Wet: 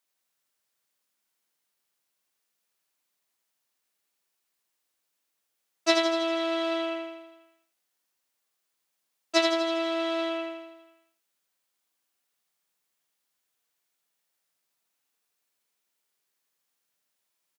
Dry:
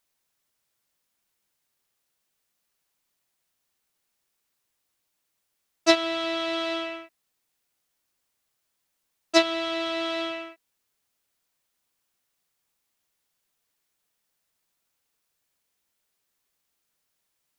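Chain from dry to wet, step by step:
high-pass filter 130 Hz 12 dB per octave
low-shelf EQ 260 Hz −5 dB
repeating echo 82 ms, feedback 60%, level −5 dB
level −3.5 dB

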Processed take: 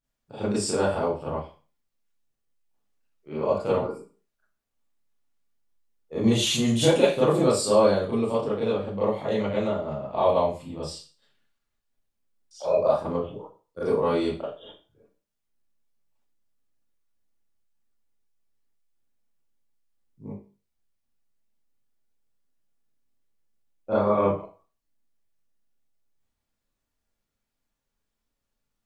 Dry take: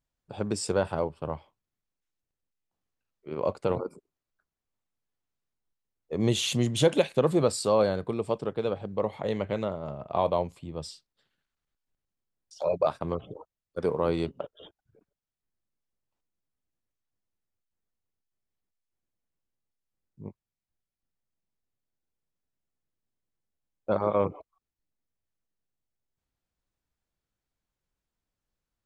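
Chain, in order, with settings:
0:12.73–0:13.88: dynamic equaliser 2,500 Hz, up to −6 dB, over −44 dBFS, Q 0.83
four-comb reverb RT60 0.35 s, combs from 27 ms, DRR −10 dB
level −6 dB

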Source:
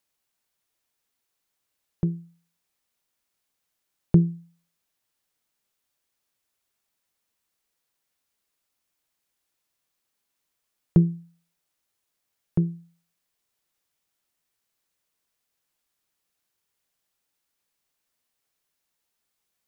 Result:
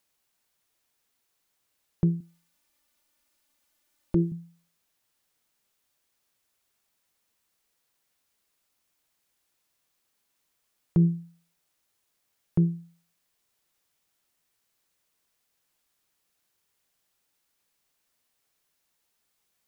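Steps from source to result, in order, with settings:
0:02.20–0:04.32: comb filter 3.4 ms, depth 86%
brickwall limiter −17.5 dBFS, peak gain reduction 11 dB
level +3.5 dB

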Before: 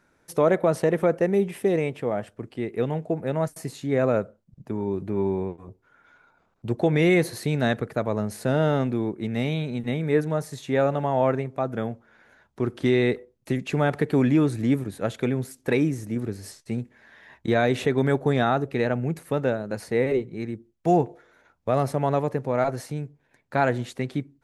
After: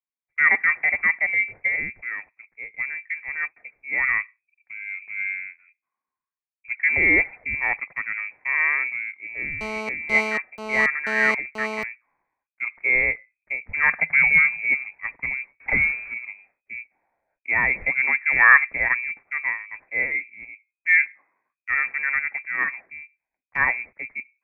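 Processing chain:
0:15.60–0:16.14: converter with a step at zero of −29 dBFS
0:18.31–0:18.95: dynamic equaliser 820 Hz, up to +8 dB, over −37 dBFS, Q 1.5
voice inversion scrambler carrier 2,500 Hz
0:09.61–0:11.83: phone interference −28 dBFS
0:13.83–0:14.69: thirty-one-band graphic EQ 160 Hz +11 dB, 315 Hz −11 dB, 1,600 Hz +8 dB
multiband upward and downward expander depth 100%
level −1 dB

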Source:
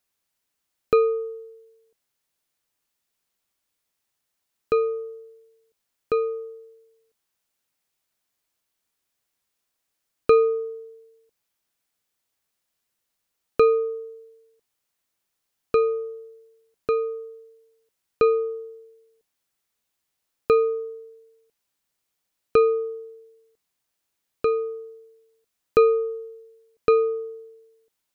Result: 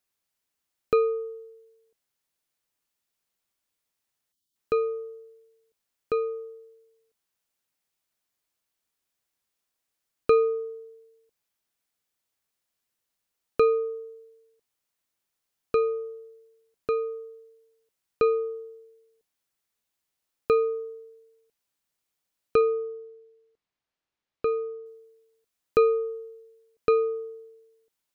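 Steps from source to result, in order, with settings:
0:04.32–0:04.56: time-frequency box erased 370–2,900 Hz
0:22.61–0:24.86: high-frequency loss of the air 150 metres
level −3.5 dB

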